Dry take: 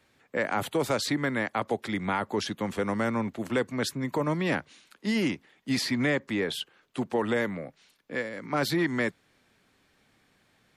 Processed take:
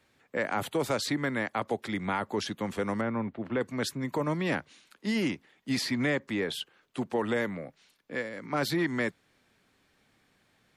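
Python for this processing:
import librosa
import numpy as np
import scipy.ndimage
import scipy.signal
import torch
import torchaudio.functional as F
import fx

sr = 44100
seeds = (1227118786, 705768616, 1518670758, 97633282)

y = fx.air_absorb(x, sr, metres=370.0, at=(3.01, 3.61))
y = y * librosa.db_to_amplitude(-2.0)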